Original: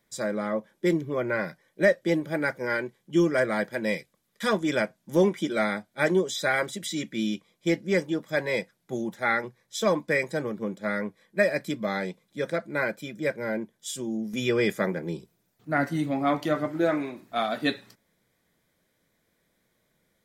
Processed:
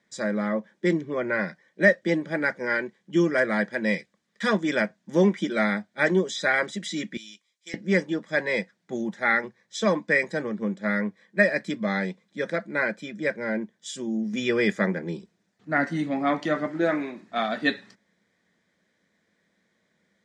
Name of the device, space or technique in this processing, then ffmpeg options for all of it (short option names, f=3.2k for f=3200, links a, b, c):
car door speaker: -filter_complex "[0:a]highpass=100,equalizer=f=130:t=q:w=4:g=-7,equalizer=f=200:t=q:w=4:g=7,equalizer=f=1.8k:t=q:w=4:g=7,lowpass=f=7.4k:w=0.5412,lowpass=f=7.4k:w=1.3066,asettb=1/sr,asplit=3[a][b][c];[a]atrim=end=7.174[d];[b]atrim=start=7.17:end=7.74,asetpts=PTS-STARTPTS,afade=t=in:d=0.004:c=qsin,afade=t=out:st=0.566:d=0.004:c=qsin,aderivative[e];[c]atrim=start=7.736[f];[d][e]acrossfade=d=0.004:c1=hsin:c2=qsin[g];[g][f]acrossfade=d=0.004:c1=qsin:c2=hsin"